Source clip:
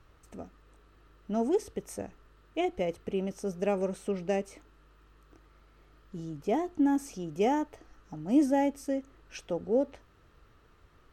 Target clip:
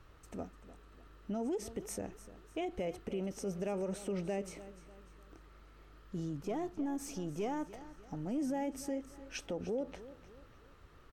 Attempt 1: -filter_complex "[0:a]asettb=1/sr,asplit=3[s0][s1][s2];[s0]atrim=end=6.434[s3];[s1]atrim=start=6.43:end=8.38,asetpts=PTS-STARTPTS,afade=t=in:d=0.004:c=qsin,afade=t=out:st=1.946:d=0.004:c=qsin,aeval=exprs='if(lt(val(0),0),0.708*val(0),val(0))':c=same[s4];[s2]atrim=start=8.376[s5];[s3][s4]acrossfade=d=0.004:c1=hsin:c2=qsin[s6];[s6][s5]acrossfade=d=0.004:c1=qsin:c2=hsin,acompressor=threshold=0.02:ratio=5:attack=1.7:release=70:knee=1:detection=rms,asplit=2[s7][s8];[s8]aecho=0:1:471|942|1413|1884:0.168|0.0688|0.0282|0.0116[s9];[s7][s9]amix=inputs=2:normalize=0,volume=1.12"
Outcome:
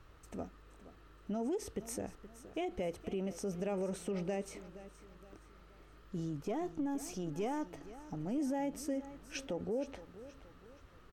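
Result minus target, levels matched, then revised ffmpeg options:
echo 173 ms late
-filter_complex "[0:a]asettb=1/sr,asplit=3[s0][s1][s2];[s0]atrim=end=6.434[s3];[s1]atrim=start=6.43:end=8.38,asetpts=PTS-STARTPTS,afade=t=in:d=0.004:c=qsin,afade=t=out:st=1.946:d=0.004:c=qsin,aeval=exprs='if(lt(val(0),0),0.708*val(0),val(0))':c=same[s4];[s2]atrim=start=8.376[s5];[s3][s4]acrossfade=d=0.004:c1=hsin:c2=qsin[s6];[s6][s5]acrossfade=d=0.004:c1=qsin:c2=hsin,acompressor=threshold=0.02:ratio=5:attack=1.7:release=70:knee=1:detection=rms,asplit=2[s7][s8];[s8]aecho=0:1:298|596|894|1192:0.168|0.0688|0.0282|0.0116[s9];[s7][s9]amix=inputs=2:normalize=0,volume=1.12"

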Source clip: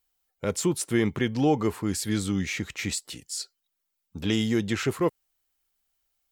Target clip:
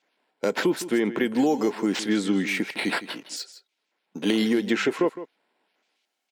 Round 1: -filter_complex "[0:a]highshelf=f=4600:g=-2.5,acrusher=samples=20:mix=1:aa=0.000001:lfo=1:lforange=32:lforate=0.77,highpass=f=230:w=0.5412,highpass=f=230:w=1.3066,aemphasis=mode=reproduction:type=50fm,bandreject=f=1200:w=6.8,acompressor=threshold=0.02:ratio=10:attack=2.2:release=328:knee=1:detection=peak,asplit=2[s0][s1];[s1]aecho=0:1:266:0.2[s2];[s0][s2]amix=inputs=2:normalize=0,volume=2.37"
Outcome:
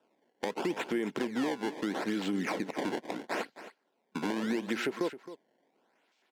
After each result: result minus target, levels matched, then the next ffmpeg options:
echo 105 ms late; compression: peak gain reduction +11 dB; decimation with a swept rate: distortion +9 dB
-filter_complex "[0:a]highshelf=f=4600:g=-2.5,acrusher=samples=20:mix=1:aa=0.000001:lfo=1:lforange=32:lforate=0.77,highpass=f=230:w=0.5412,highpass=f=230:w=1.3066,aemphasis=mode=reproduction:type=50fm,bandreject=f=1200:w=6.8,acompressor=threshold=0.0668:ratio=10:attack=2.2:release=328:knee=1:detection=peak,asplit=2[s0][s1];[s1]aecho=0:1:161:0.2[s2];[s0][s2]amix=inputs=2:normalize=0,volume=2.37"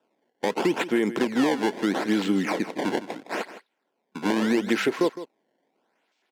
decimation with a swept rate: distortion +9 dB
-filter_complex "[0:a]highshelf=f=4600:g=-2.5,acrusher=samples=4:mix=1:aa=0.000001:lfo=1:lforange=6.4:lforate=0.77,highpass=f=230:w=0.5412,highpass=f=230:w=1.3066,aemphasis=mode=reproduction:type=50fm,bandreject=f=1200:w=6.8,acompressor=threshold=0.0668:ratio=10:attack=2.2:release=328:knee=1:detection=peak,asplit=2[s0][s1];[s1]aecho=0:1:161:0.2[s2];[s0][s2]amix=inputs=2:normalize=0,volume=2.37"

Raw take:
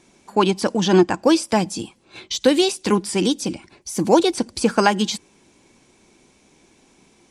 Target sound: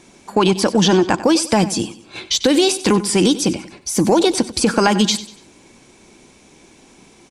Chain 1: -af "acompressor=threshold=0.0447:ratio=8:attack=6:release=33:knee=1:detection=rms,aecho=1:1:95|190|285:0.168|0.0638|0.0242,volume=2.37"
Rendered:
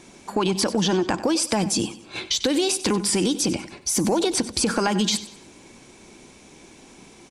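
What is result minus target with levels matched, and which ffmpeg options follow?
compression: peak gain reduction +8 dB
-af "acompressor=threshold=0.126:ratio=8:attack=6:release=33:knee=1:detection=rms,aecho=1:1:95|190|285:0.168|0.0638|0.0242,volume=2.37"

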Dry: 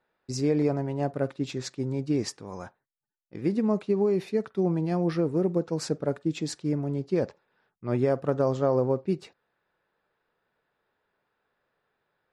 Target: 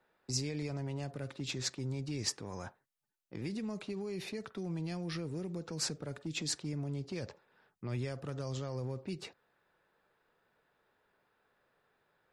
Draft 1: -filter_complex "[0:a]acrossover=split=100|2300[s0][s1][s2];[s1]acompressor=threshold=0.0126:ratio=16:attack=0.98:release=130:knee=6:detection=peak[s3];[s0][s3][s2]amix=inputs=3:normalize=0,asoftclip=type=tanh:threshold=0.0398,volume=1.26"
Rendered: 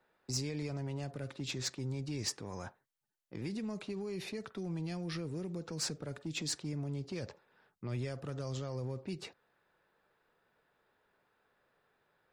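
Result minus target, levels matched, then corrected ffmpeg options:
saturation: distortion +17 dB
-filter_complex "[0:a]acrossover=split=100|2300[s0][s1][s2];[s1]acompressor=threshold=0.0126:ratio=16:attack=0.98:release=130:knee=6:detection=peak[s3];[s0][s3][s2]amix=inputs=3:normalize=0,asoftclip=type=tanh:threshold=0.133,volume=1.26"

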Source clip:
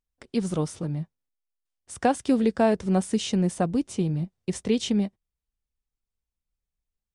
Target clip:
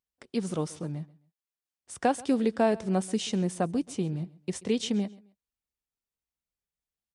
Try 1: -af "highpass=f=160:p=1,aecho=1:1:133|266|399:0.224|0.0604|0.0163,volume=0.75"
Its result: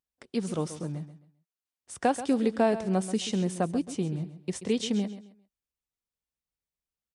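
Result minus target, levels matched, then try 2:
echo-to-direct +8.5 dB
-af "highpass=f=160:p=1,aecho=1:1:133|266:0.0841|0.0227,volume=0.75"

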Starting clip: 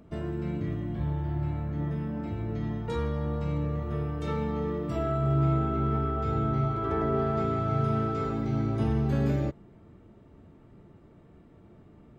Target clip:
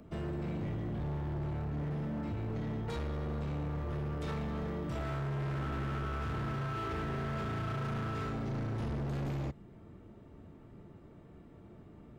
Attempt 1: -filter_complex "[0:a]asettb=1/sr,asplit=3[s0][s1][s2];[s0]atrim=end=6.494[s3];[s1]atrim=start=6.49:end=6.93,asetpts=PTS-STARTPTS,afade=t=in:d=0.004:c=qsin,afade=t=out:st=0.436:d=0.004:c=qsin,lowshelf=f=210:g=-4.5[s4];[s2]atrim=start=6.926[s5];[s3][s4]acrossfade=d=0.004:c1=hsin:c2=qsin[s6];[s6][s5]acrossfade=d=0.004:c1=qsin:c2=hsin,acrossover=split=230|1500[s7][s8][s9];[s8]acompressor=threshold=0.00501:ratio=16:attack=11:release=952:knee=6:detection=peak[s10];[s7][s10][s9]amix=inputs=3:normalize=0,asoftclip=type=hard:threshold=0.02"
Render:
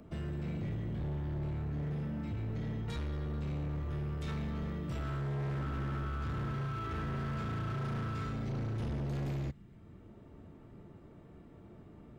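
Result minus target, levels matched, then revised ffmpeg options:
compression: peak gain reduction +11 dB
-filter_complex "[0:a]asettb=1/sr,asplit=3[s0][s1][s2];[s0]atrim=end=6.494[s3];[s1]atrim=start=6.49:end=6.93,asetpts=PTS-STARTPTS,afade=t=in:d=0.004:c=qsin,afade=t=out:st=0.436:d=0.004:c=qsin,lowshelf=f=210:g=-4.5[s4];[s2]atrim=start=6.926[s5];[s3][s4]acrossfade=d=0.004:c1=hsin:c2=qsin[s6];[s6][s5]acrossfade=d=0.004:c1=qsin:c2=hsin,acrossover=split=230|1500[s7][s8][s9];[s8]acompressor=threshold=0.0188:ratio=16:attack=11:release=952:knee=6:detection=peak[s10];[s7][s10][s9]amix=inputs=3:normalize=0,asoftclip=type=hard:threshold=0.02"

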